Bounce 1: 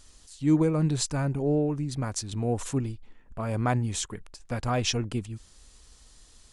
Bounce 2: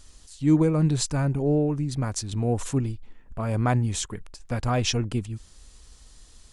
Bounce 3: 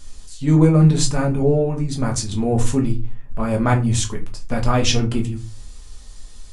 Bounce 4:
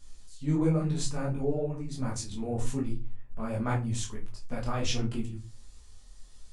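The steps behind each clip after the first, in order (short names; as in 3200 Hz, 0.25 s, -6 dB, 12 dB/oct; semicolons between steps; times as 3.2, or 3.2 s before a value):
low shelf 160 Hz +4 dB; gain +1.5 dB
shoebox room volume 120 m³, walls furnished, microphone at 1.3 m; gain +4 dB
detuned doubles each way 48 cents; gain -9 dB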